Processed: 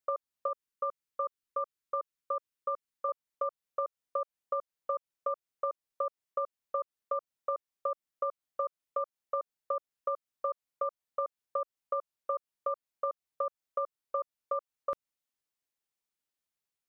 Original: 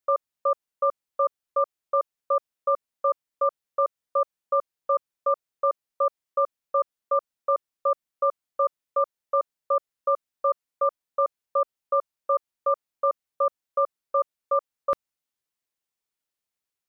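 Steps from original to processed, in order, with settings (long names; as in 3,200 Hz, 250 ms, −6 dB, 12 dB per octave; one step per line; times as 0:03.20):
0:00.48–0:03.09: parametric band 710 Hz −13.5 dB 0.46 octaves
downward compressor, threshold −26 dBFS, peak gain reduction 7.5 dB
level −3.5 dB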